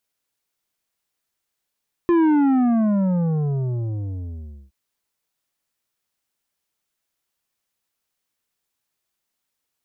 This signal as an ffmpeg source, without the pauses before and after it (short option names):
-f lavfi -i "aevalsrc='0.188*clip((2.62-t)/2.48,0,1)*tanh(2.82*sin(2*PI*350*2.62/log(65/350)*(exp(log(65/350)*t/2.62)-1)))/tanh(2.82)':d=2.62:s=44100"